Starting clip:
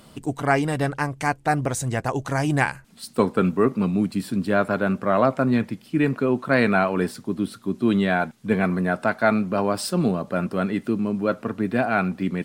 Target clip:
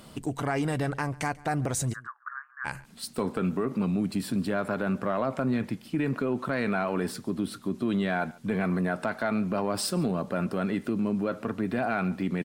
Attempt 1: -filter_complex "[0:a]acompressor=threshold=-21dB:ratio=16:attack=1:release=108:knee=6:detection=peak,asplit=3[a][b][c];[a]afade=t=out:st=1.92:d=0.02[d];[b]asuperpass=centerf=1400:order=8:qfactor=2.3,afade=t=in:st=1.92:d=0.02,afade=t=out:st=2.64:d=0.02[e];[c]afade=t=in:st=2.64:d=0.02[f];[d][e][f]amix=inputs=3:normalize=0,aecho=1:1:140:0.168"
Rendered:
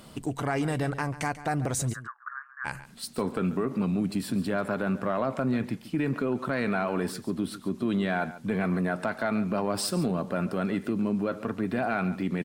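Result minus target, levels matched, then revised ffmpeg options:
echo-to-direct +8 dB
-filter_complex "[0:a]acompressor=threshold=-21dB:ratio=16:attack=1:release=108:knee=6:detection=peak,asplit=3[a][b][c];[a]afade=t=out:st=1.92:d=0.02[d];[b]asuperpass=centerf=1400:order=8:qfactor=2.3,afade=t=in:st=1.92:d=0.02,afade=t=out:st=2.64:d=0.02[e];[c]afade=t=in:st=2.64:d=0.02[f];[d][e][f]amix=inputs=3:normalize=0,aecho=1:1:140:0.0668"

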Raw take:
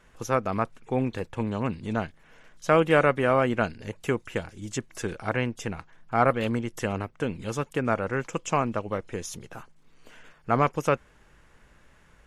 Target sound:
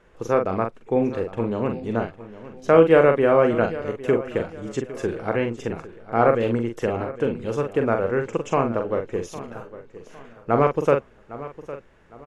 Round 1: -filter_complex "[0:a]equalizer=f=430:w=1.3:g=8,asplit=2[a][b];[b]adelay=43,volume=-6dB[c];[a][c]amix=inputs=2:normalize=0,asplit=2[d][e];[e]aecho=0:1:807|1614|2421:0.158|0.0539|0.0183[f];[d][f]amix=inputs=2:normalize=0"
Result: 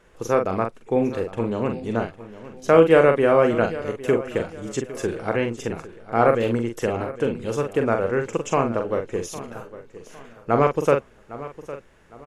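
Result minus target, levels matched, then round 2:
4000 Hz band +3.0 dB
-filter_complex "[0:a]lowpass=f=3.1k:p=1,equalizer=f=430:w=1.3:g=8,asplit=2[a][b];[b]adelay=43,volume=-6dB[c];[a][c]amix=inputs=2:normalize=0,asplit=2[d][e];[e]aecho=0:1:807|1614|2421:0.158|0.0539|0.0183[f];[d][f]amix=inputs=2:normalize=0"

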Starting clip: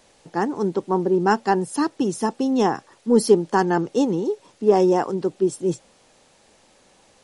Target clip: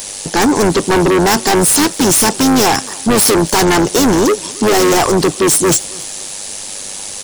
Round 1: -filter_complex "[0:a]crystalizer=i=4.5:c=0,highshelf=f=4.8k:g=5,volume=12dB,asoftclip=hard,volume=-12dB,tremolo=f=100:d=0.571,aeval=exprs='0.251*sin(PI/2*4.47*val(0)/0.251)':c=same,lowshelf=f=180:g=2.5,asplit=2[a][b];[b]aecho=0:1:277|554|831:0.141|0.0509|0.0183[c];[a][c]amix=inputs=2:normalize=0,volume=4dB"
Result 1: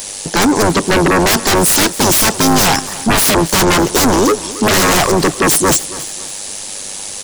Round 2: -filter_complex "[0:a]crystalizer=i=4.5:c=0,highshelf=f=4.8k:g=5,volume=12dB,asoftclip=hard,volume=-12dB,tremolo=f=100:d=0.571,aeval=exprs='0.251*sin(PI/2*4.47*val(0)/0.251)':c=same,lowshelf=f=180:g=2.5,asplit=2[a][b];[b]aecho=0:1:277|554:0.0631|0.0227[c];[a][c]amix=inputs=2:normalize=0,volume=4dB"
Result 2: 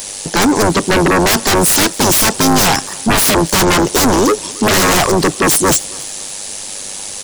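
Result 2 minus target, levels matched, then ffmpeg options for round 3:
overloaded stage: distortion -6 dB
-filter_complex "[0:a]crystalizer=i=4.5:c=0,highshelf=f=4.8k:g=5,volume=19.5dB,asoftclip=hard,volume=-19.5dB,tremolo=f=100:d=0.571,aeval=exprs='0.251*sin(PI/2*4.47*val(0)/0.251)':c=same,lowshelf=f=180:g=2.5,asplit=2[a][b];[b]aecho=0:1:277|554:0.0631|0.0227[c];[a][c]amix=inputs=2:normalize=0,volume=4dB"

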